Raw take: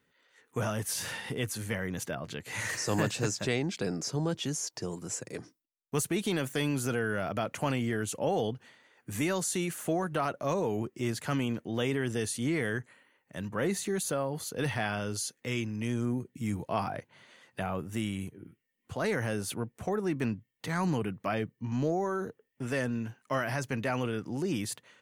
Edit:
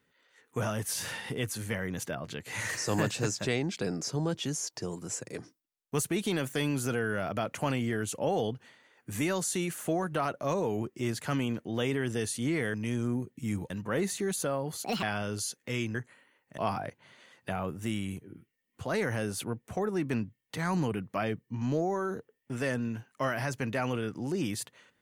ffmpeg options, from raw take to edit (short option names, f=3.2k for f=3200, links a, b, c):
-filter_complex "[0:a]asplit=7[a][b][c][d][e][f][g];[a]atrim=end=12.742[h];[b]atrim=start=15.718:end=16.682[i];[c]atrim=start=13.368:end=14.514[j];[d]atrim=start=14.51:end=14.8,asetpts=PTS-STARTPTS,asetrate=68796,aresample=44100,atrim=end_sample=8198,asetpts=PTS-STARTPTS[k];[e]atrim=start=14.796:end=15.722[l];[f]atrim=start=12.738:end=13.372[m];[g]atrim=start=16.678[n];[h][i]acrossfade=d=0.004:c1=hsin:c2=hsin[o];[o][j]acrossfade=d=0.004:c1=hsin:c2=hsin[p];[p][k]acrossfade=d=0.004:c1=hsin:c2=hsin[q];[q][l]acrossfade=d=0.004:c1=hsin:c2=hsin[r];[r][m]acrossfade=d=0.004:c1=hsin:c2=hsin[s];[s][n]acrossfade=d=0.004:c1=hsin:c2=hsin"